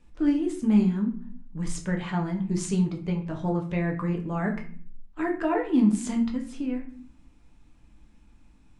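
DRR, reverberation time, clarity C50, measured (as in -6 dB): 1.0 dB, 0.50 s, 10.0 dB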